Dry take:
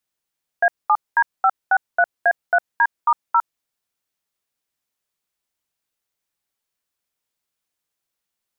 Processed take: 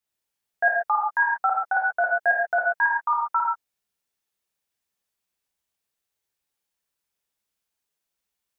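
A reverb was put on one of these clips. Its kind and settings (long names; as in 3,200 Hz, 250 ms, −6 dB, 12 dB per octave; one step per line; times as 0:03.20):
reverb whose tail is shaped and stops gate 160 ms flat, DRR −3 dB
level −6 dB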